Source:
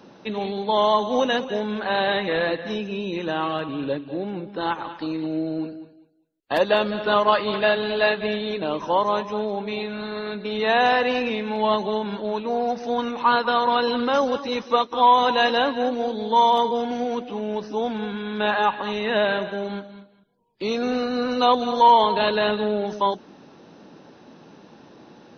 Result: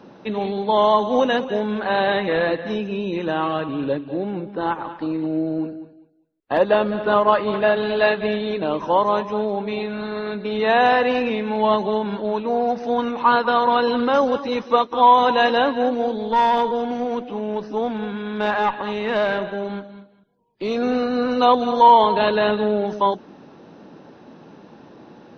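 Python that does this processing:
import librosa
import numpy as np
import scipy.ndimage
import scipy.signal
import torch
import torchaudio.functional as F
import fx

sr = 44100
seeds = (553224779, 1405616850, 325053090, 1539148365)

y = fx.high_shelf(x, sr, hz=3400.0, db=-10.0, at=(4.54, 7.77))
y = fx.tube_stage(y, sr, drive_db=13.0, bias=0.4, at=(16.17, 20.76))
y = fx.high_shelf(y, sr, hz=3400.0, db=-10.0)
y = y * librosa.db_to_amplitude(3.5)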